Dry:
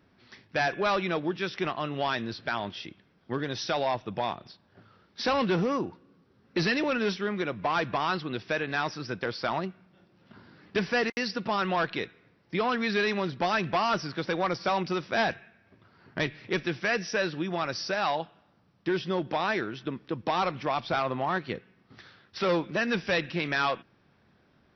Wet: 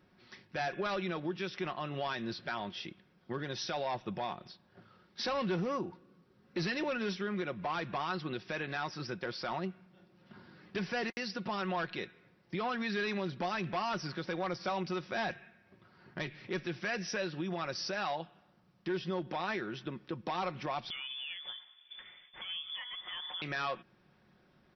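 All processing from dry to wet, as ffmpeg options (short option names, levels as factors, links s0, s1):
-filter_complex "[0:a]asettb=1/sr,asplit=3[s0][s1][s2];[s0]atrim=end=20.904[s3];[s1]atrim=start=20.9:end=23.42,asetpts=PTS-STARTPTS,afade=t=in:d=0.004:c=qsin,afade=t=out:st=2.516:d=0.004:c=qsin,equalizer=f=94:w=0.8:g=10,acompressor=threshold=0.0158:ratio=16:attack=3.2:release=140:knee=1:detection=peak,lowpass=f=3100:t=q:w=0.5098,lowpass=f=3100:t=q:w=0.6013,lowpass=f=3100:t=q:w=0.9,lowpass=f=3100:t=q:w=2.563,afreqshift=-3600[s4];[s2]atrim=start=23.416[s5];[s3][s4]acrossfade=d=0.004:c1=hsin:c2=qsin[s6];[s6][s5]acrossfade=d=0.004:c1=qsin:c2=hsin,aecho=1:1:5.5:0.38,alimiter=limit=0.0631:level=0:latency=1:release=157,volume=0.708"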